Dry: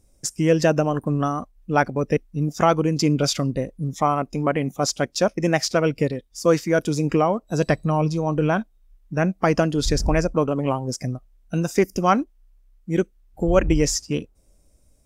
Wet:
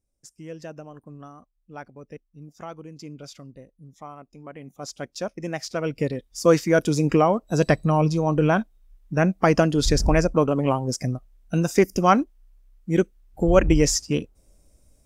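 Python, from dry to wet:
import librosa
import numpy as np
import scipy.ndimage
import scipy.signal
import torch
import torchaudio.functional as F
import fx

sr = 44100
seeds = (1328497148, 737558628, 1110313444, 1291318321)

y = fx.gain(x, sr, db=fx.line((4.44, -20.0), (5.06, -10.0), (5.64, -10.0), (6.27, 1.0)))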